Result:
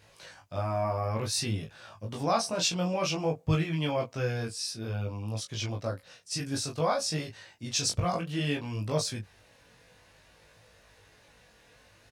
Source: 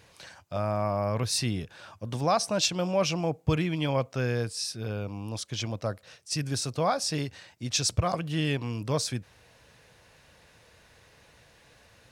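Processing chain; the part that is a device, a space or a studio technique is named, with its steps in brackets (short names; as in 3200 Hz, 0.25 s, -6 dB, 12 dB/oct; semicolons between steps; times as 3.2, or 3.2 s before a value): double-tracked vocal (doubler 18 ms -4 dB; chorus 0.56 Hz, delay 19.5 ms, depth 2.8 ms)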